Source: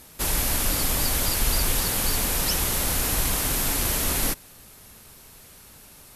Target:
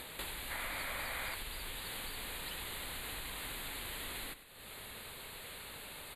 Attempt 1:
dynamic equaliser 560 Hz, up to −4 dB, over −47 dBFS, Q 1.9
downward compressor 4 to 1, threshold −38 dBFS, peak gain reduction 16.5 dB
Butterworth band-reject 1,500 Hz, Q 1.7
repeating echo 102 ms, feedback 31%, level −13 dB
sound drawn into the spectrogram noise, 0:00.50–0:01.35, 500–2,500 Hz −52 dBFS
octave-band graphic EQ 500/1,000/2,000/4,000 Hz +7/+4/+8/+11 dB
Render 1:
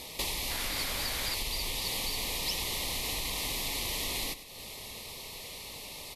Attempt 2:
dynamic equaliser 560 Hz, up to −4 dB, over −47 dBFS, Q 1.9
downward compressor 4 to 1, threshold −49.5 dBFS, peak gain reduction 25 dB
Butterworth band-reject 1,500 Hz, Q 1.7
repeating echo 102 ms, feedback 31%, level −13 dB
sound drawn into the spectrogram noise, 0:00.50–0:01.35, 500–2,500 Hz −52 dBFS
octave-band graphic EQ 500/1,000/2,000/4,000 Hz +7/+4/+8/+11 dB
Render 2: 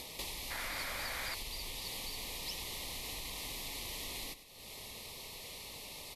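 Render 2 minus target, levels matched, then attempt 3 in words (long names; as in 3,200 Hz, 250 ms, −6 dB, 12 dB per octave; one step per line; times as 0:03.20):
2,000 Hz band −2.5 dB
dynamic equaliser 560 Hz, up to −4 dB, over −47 dBFS, Q 1.9
downward compressor 4 to 1, threshold −49.5 dBFS, peak gain reduction 25 dB
Butterworth band-reject 5,600 Hz, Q 1.7
repeating echo 102 ms, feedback 31%, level −13 dB
sound drawn into the spectrogram noise, 0:00.50–0:01.35, 500–2,500 Hz −52 dBFS
octave-band graphic EQ 500/1,000/2,000/4,000 Hz +7/+4/+8/+11 dB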